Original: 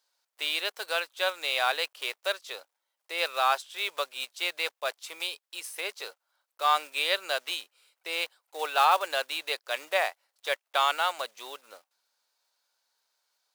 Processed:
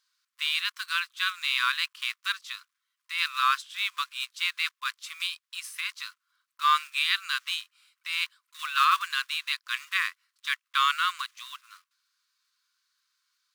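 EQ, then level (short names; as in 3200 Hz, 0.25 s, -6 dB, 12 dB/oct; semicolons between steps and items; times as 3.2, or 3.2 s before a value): brick-wall FIR high-pass 1000 Hz; high shelf 8700 Hz -7.5 dB; +3.0 dB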